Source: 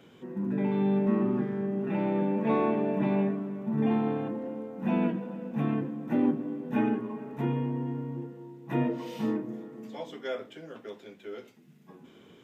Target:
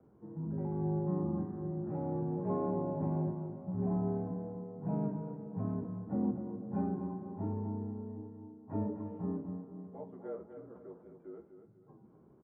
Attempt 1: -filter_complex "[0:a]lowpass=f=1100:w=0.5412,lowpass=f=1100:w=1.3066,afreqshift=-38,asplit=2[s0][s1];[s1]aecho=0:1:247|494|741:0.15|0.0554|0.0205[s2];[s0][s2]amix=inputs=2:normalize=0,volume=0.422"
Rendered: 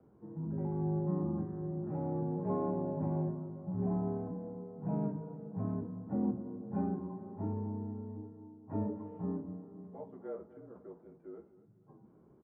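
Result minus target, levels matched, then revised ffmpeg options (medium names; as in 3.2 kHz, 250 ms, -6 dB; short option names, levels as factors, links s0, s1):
echo-to-direct -7.5 dB
-filter_complex "[0:a]lowpass=f=1100:w=0.5412,lowpass=f=1100:w=1.3066,afreqshift=-38,asplit=2[s0][s1];[s1]aecho=0:1:247|494|741|988:0.355|0.131|0.0486|0.018[s2];[s0][s2]amix=inputs=2:normalize=0,volume=0.422"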